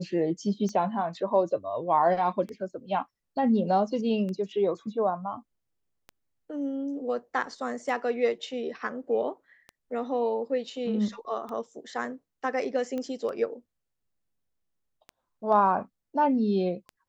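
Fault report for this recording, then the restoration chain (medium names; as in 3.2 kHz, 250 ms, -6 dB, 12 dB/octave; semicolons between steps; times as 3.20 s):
tick 33 1/3 rpm -26 dBFS
12.98 s: pop -22 dBFS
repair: de-click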